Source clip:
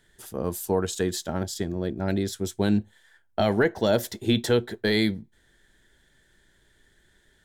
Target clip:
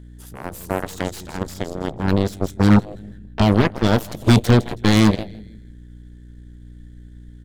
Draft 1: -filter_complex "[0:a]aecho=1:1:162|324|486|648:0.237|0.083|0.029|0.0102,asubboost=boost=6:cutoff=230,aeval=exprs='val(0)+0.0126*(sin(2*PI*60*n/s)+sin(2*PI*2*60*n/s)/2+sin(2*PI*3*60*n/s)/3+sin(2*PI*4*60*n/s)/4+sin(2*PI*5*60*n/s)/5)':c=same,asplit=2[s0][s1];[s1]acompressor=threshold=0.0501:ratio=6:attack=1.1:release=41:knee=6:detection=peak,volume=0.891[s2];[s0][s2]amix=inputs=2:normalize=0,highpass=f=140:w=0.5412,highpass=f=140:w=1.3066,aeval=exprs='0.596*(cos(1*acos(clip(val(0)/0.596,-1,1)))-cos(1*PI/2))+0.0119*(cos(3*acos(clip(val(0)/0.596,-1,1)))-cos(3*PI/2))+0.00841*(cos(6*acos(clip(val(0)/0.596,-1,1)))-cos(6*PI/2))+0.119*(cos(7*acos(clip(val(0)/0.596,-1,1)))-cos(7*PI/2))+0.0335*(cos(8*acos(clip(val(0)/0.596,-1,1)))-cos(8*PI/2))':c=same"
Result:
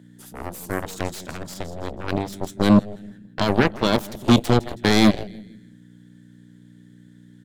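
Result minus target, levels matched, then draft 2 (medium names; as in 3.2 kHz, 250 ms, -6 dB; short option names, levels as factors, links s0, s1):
125 Hz band -4.5 dB
-filter_complex "[0:a]aecho=1:1:162|324|486|648:0.237|0.083|0.029|0.0102,asubboost=boost=6:cutoff=230,aeval=exprs='val(0)+0.0126*(sin(2*PI*60*n/s)+sin(2*PI*2*60*n/s)/2+sin(2*PI*3*60*n/s)/3+sin(2*PI*4*60*n/s)/4+sin(2*PI*5*60*n/s)/5)':c=same,asplit=2[s0][s1];[s1]acompressor=threshold=0.0501:ratio=6:attack=1.1:release=41:knee=6:detection=peak,volume=0.891[s2];[s0][s2]amix=inputs=2:normalize=0,aeval=exprs='0.596*(cos(1*acos(clip(val(0)/0.596,-1,1)))-cos(1*PI/2))+0.0119*(cos(3*acos(clip(val(0)/0.596,-1,1)))-cos(3*PI/2))+0.00841*(cos(6*acos(clip(val(0)/0.596,-1,1)))-cos(6*PI/2))+0.119*(cos(7*acos(clip(val(0)/0.596,-1,1)))-cos(7*PI/2))+0.0335*(cos(8*acos(clip(val(0)/0.596,-1,1)))-cos(8*PI/2))':c=same"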